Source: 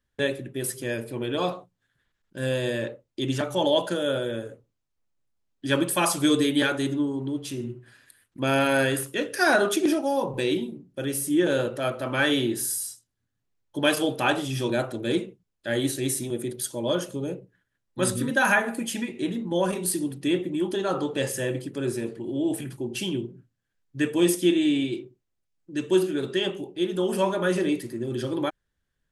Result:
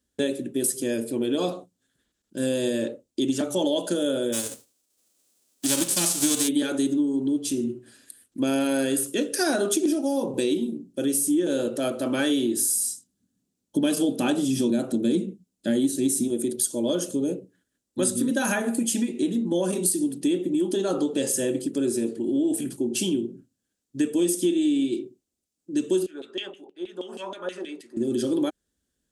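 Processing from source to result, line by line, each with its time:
4.32–6.47 s: formants flattened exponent 0.3
12.75–16.28 s: peaking EQ 190 Hz +12 dB 0.92 oct
26.06–27.97 s: LFO band-pass saw down 6.3 Hz 690–3000 Hz
whole clip: ten-band graphic EQ 125 Hz -11 dB, 250 Hz +8 dB, 1 kHz -7 dB, 2 kHz -8 dB, 8 kHz +8 dB; compression 4:1, threshold -25 dBFS; high-pass 58 Hz; trim +4 dB

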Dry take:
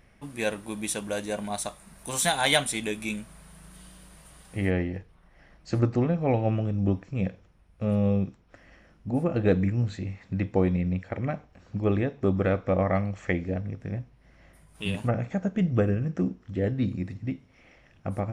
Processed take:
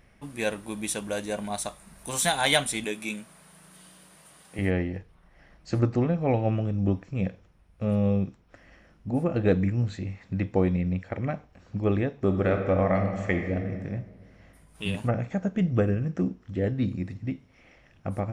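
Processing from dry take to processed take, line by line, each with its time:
2.84–4.59 s: Bessel high-pass 210 Hz
12.21–13.82 s: reverb throw, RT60 1.6 s, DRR 4.5 dB

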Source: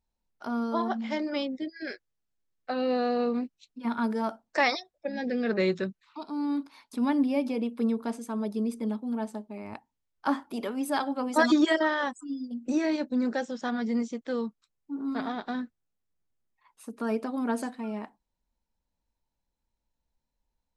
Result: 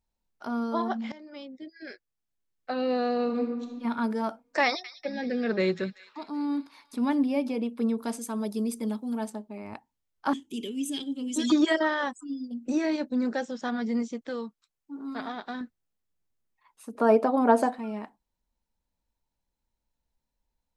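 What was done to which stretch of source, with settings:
1.12–2.73 s: fade in, from -20 dB
3.23–3.84 s: reverb throw, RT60 1.4 s, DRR 2.5 dB
4.65–7.23 s: feedback echo behind a high-pass 191 ms, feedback 58%, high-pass 1.8 kHz, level -13 dB
7.98–9.30 s: treble shelf 4.6 kHz +12 dB
10.33–11.50 s: FFT filter 410 Hz 0 dB, 660 Hz -25 dB, 1.4 kHz -28 dB, 3.1 kHz +9 dB, 4.6 kHz -8 dB, 6.6 kHz +11 dB, 12 kHz -3 dB
14.29–15.61 s: bass shelf 460 Hz -6.5 dB
16.95–17.79 s: peaking EQ 680 Hz +14.5 dB 2 oct

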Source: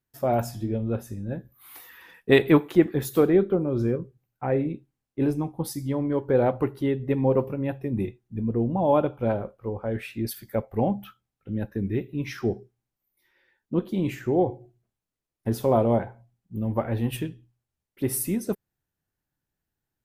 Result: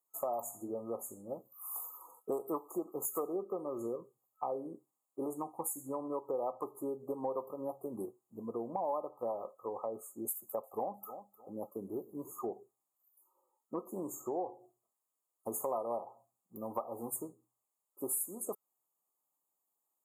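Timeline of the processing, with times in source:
10.33–12.54 s: feedback delay 305 ms, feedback 26%, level -20 dB
whole clip: Bessel high-pass 1 kHz, order 2; FFT band-reject 1.3–6.5 kHz; compression 4:1, threshold -41 dBFS; trim +6 dB

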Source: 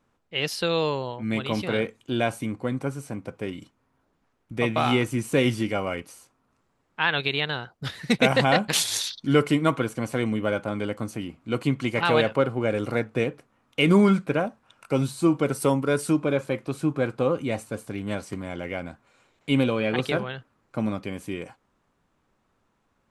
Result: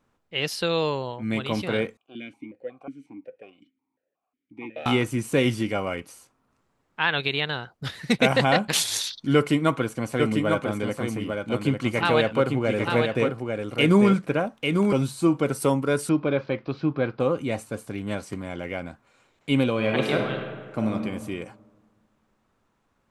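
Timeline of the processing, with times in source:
1.97–4.86 s: stepped vowel filter 5.5 Hz
9.35–14.93 s: delay 847 ms -4.5 dB
16.09–17.20 s: steep low-pass 5.1 kHz 48 dB/octave
19.71–20.93 s: reverb throw, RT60 1.6 s, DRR 2.5 dB

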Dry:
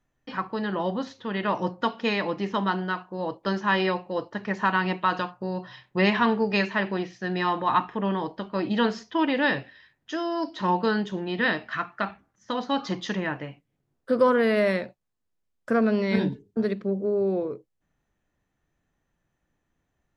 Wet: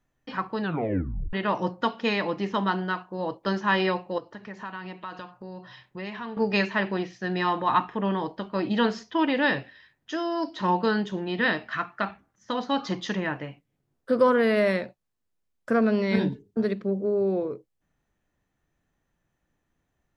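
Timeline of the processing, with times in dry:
0.61 s: tape stop 0.72 s
4.18–6.37 s: compression 2:1, threshold -44 dBFS

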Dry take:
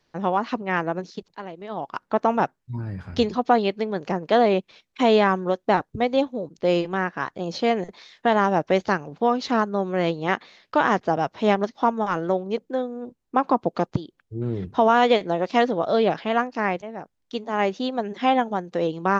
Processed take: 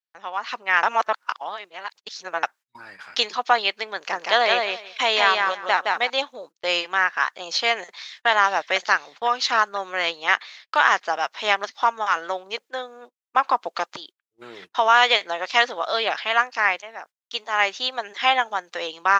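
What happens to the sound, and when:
0.83–2.43 s: reverse
3.96–6.10 s: feedback delay 168 ms, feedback 17%, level -3.5 dB
7.82–8.27 s: echo throw 500 ms, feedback 55%, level -9 dB
whole clip: high-pass 1.4 kHz 12 dB/octave; gate -54 dBFS, range -26 dB; level rider gain up to 11 dB

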